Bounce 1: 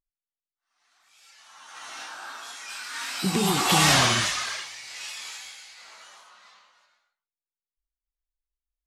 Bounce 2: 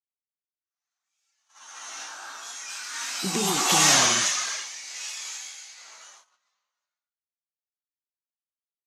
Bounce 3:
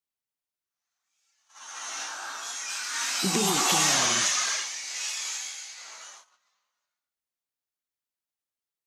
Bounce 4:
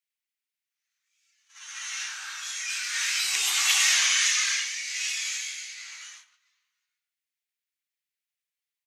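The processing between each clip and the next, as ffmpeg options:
-af "highpass=210,agate=range=-23dB:threshold=-49dB:ratio=16:detection=peak,equalizer=f=6.4k:t=o:w=0.43:g=10.5,volume=-1.5dB"
-af "acompressor=threshold=-24dB:ratio=4,volume=3dB"
-filter_complex "[0:a]highpass=f=2.1k:t=q:w=2.1,asplit=2[a][b];[b]adelay=100,highpass=300,lowpass=3.4k,asoftclip=type=hard:threshold=-18.5dB,volume=-14dB[c];[a][c]amix=inputs=2:normalize=0"

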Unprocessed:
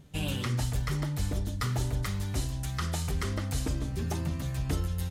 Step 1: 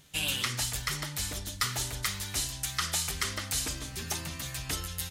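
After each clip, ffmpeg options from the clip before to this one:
-af "tiltshelf=f=970:g=-10"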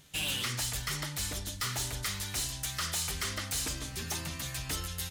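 -af "asoftclip=type=hard:threshold=-29dB"

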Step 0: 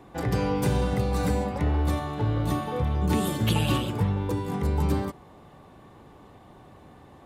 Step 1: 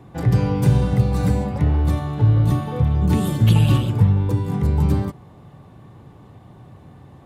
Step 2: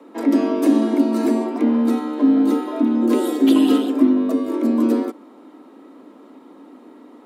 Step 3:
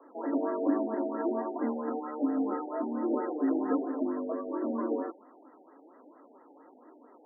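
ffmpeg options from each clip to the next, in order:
-af "equalizer=f=120:w=0.95:g=12.5"
-af "afreqshift=160"
-af "flanger=delay=2.6:depth=4.7:regen=42:speed=1.3:shape=triangular,highpass=500,lowpass=5.6k,afftfilt=real='re*lt(b*sr/1024,850*pow(2100/850,0.5+0.5*sin(2*PI*4.4*pts/sr)))':imag='im*lt(b*sr/1024,850*pow(2100/850,0.5+0.5*sin(2*PI*4.4*pts/sr)))':win_size=1024:overlap=0.75,volume=-1dB"

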